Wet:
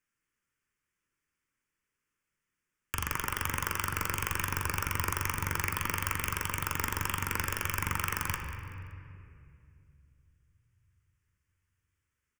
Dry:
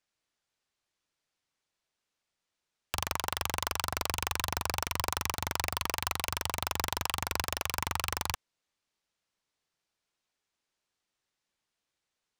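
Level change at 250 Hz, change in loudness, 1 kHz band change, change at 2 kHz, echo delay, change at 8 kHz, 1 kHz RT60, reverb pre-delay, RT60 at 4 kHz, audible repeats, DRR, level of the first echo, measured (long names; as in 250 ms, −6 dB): +3.5 dB, +0.5 dB, −1.0 dB, +3.0 dB, 190 ms, −0.5 dB, 2.2 s, 7 ms, 1.6 s, 1, 3.0 dB, −14.5 dB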